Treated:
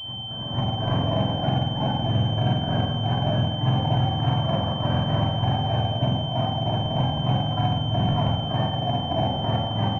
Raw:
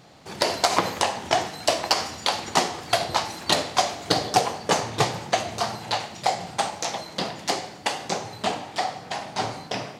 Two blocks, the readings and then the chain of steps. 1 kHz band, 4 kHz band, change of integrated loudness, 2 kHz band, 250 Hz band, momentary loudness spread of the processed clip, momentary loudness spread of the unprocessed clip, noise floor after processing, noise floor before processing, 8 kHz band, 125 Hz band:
−2.5 dB, 0.0 dB, +1.5 dB, −9.5 dB, +8.0 dB, 2 LU, 8 LU, −30 dBFS, −42 dBFS, below −30 dB, +16.5 dB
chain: frequency axis turned over on the octave scale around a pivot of 730 Hz
noise gate −32 dBFS, range −21 dB
Bessel high-pass filter 160 Hz, order 2
comb filter 1.2 ms, depth 57%
brickwall limiter −14.5 dBFS, peak gain reduction 9 dB
compressor whose output falls as the input rises −30 dBFS, ratio −0.5
backwards echo 486 ms −13.5 dB
rectangular room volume 980 cubic metres, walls mixed, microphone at 3 metres
switching amplifier with a slow clock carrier 3,100 Hz

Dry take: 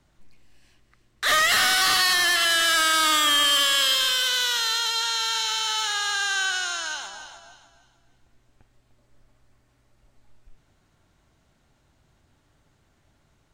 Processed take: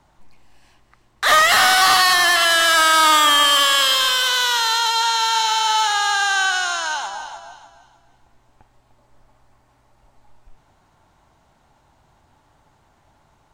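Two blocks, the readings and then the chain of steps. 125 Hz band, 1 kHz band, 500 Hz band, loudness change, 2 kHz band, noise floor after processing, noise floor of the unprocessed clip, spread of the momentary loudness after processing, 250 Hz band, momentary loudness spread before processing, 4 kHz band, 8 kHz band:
can't be measured, +10.5 dB, +8.5 dB, +5.5 dB, +5.5 dB, −59 dBFS, −65 dBFS, 9 LU, +4.5 dB, 9 LU, +4.0 dB, +3.5 dB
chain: parametric band 880 Hz +12 dB 0.86 octaves
level +3.5 dB

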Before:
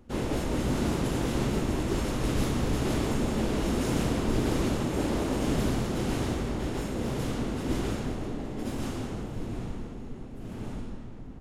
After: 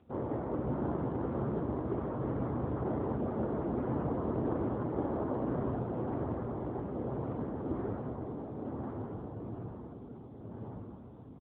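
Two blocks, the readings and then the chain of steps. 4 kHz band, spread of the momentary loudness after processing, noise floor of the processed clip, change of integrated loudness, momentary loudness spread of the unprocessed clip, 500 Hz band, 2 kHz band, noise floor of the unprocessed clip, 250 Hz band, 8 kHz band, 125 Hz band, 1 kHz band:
below −30 dB, 11 LU, −49 dBFS, −6.0 dB, 11 LU, −3.5 dB, −15.5 dB, −40 dBFS, −6.0 dB, below −40 dB, −6.5 dB, −4.0 dB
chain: low-pass filter 1,200 Hz 24 dB per octave
parametric band 200 Hz −7 dB 1.8 octaves
single-tap delay 496 ms −14.5 dB
AMR narrowband 7.95 kbit/s 8,000 Hz

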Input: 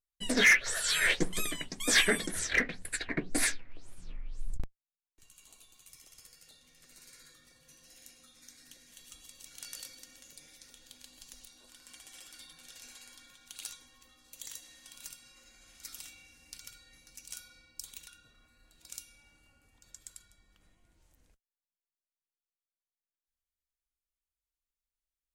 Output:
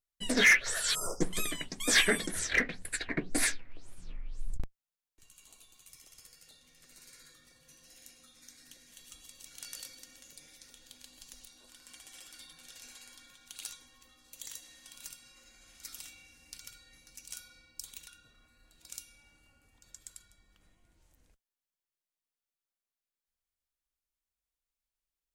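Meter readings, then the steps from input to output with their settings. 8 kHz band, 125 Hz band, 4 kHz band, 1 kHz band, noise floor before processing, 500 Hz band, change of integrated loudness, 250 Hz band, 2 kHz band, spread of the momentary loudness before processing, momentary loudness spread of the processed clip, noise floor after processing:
0.0 dB, 0.0 dB, −0.5 dB, 0.0 dB, below −85 dBFS, 0.0 dB, −0.5 dB, 0.0 dB, −0.5 dB, 23 LU, 25 LU, below −85 dBFS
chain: time-frequency box erased 0:00.95–0:01.21, 1,400–4,800 Hz

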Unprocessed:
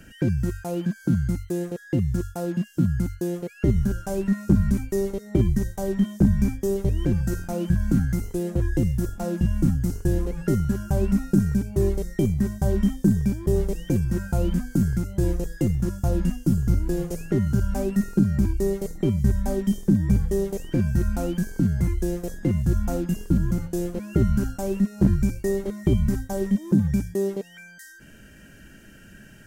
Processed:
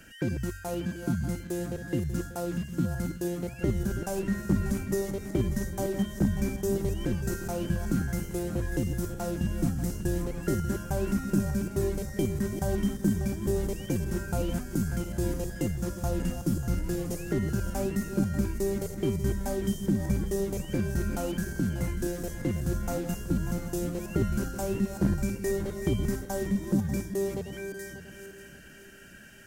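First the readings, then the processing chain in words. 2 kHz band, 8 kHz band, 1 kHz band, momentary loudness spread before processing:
0.0 dB, +1.0 dB, −1.0 dB, 6 LU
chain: feedback delay that plays each chunk backwards 295 ms, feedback 61%, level −9 dB
low-shelf EQ 410 Hz −9 dB

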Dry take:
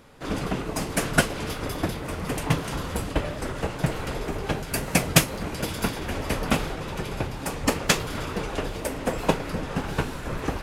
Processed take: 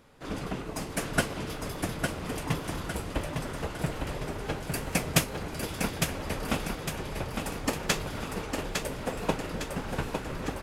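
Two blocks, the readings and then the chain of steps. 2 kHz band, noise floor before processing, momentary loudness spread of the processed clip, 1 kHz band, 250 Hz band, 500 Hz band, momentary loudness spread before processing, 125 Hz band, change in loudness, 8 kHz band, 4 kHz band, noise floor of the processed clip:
−5.0 dB, −35 dBFS, 6 LU, −5.0 dB, −5.0 dB, −5.0 dB, 8 LU, −5.5 dB, −5.0 dB, −5.0 dB, −5.0 dB, −39 dBFS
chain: repeating echo 856 ms, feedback 46%, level −5 dB
level −6.5 dB

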